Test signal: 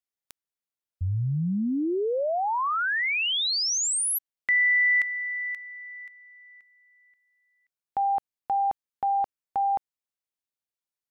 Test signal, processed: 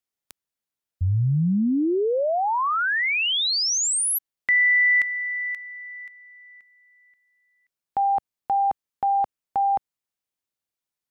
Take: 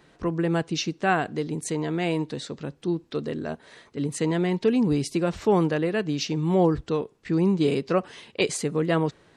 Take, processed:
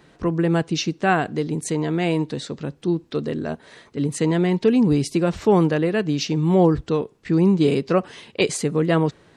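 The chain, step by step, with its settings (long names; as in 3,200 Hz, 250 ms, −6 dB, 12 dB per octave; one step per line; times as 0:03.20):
parametric band 140 Hz +2.5 dB 2.8 octaves
level +3 dB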